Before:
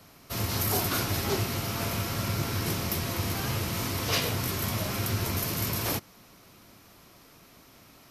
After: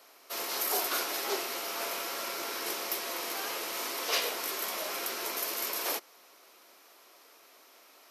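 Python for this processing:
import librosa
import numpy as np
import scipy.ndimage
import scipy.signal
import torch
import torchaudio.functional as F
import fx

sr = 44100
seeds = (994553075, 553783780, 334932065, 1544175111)

y = scipy.signal.sosfilt(scipy.signal.butter(4, 390.0, 'highpass', fs=sr, output='sos'), x)
y = y * librosa.db_to_amplitude(-1.5)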